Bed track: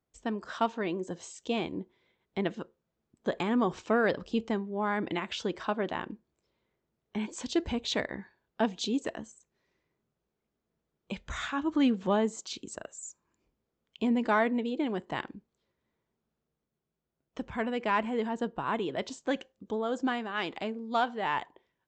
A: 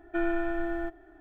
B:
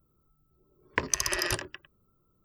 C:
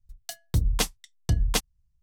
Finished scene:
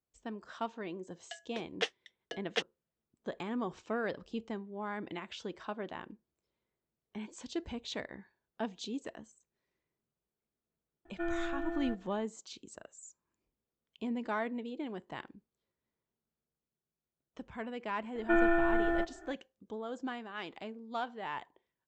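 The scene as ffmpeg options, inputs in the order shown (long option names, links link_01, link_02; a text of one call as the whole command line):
ffmpeg -i bed.wav -i cue0.wav -i cue1.wav -i cue2.wav -filter_complex "[1:a]asplit=2[link_01][link_02];[0:a]volume=-9dB[link_03];[3:a]highpass=frequency=380:width=0.5412,highpass=frequency=380:width=1.3066,equalizer=frequency=460:width_type=q:width=4:gain=9,equalizer=frequency=670:width_type=q:width=4:gain=4,equalizer=frequency=1000:width_type=q:width=4:gain=-9,equalizer=frequency=1800:width_type=q:width=4:gain=10,equalizer=frequency=3000:width_type=q:width=4:gain=7,equalizer=frequency=4600:width_type=q:width=4:gain=-7,lowpass=frequency=5000:width=0.5412,lowpass=frequency=5000:width=1.3066[link_04];[link_02]equalizer=frequency=1200:width_type=o:width=2.5:gain=4.5[link_05];[link_04]atrim=end=2.02,asetpts=PTS-STARTPTS,volume=-8dB,afade=type=in:duration=0.004:curve=hsin,afade=type=out:start_time=2.016:duration=0.004:curve=hsin,adelay=1020[link_06];[link_01]atrim=end=1.2,asetpts=PTS-STARTPTS,volume=-7dB,afade=type=in:duration=0.004:curve=hsin,afade=type=out:start_time=1.196:duration=0.004:curve=hsin,adelay=11050[link_07];[link_05]atrim=end=1.2,asetpts=PTS-STARTPTS,afade=type=in:duration=0.004:curve=hsin,afade=type=out:start_time=1.196:duration=0.004:curve=hsin,adelay=18150[link_08];[link_03][link_06][link_07][link_08]amix=inputs=4:normalize=0" out.wav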